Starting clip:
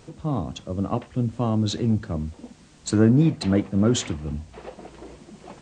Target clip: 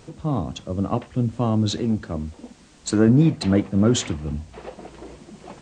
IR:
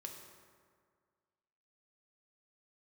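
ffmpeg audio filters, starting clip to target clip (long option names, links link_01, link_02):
-filter_complex "[0:a]asettb=1/sr,asplit=3[link_01][link_02][link_03];[link_01]atrim=end=1.804[link_04];[link_02]atrim=start=1.8:end=3.08,asetpts=PTS-STARTPTS,afade=type=in:duration=0.004:curve=qsin,afade=type=out:start_time=1.276:duration=0.004:curve=qsin,equalizer=frequency=120:width_type=o:width=0.9:gain=-7.5[link_05];[link_03]atrim=start=3.076[link_06];[link_04][link_05]acrossfade=duration=0.004:curve1=hsin:curve2=qsin[link_07];[link_07][link_06]acrossfade=duration=0.004:curve1=qsin:curve2=hsin,volume=2dB"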